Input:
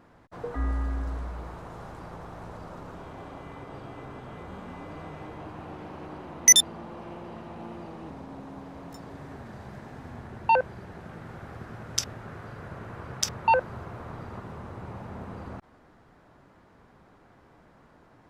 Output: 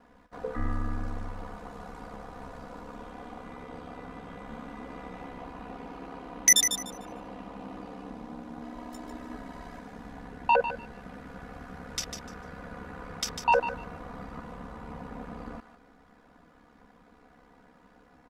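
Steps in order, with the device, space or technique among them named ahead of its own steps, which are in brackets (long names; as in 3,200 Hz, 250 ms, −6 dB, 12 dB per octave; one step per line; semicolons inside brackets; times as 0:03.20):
0:08.61–0:09.79: comb filter 3.1 ms, depth 83%
ring-modulated robot voice (ring modulation 34 Hz; comb filter 4.1 ms, depth 73%)
feedback echo with a high-pass in the loop 149 ms, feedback 22%, high-pass 1,000 Hz, level −8 dB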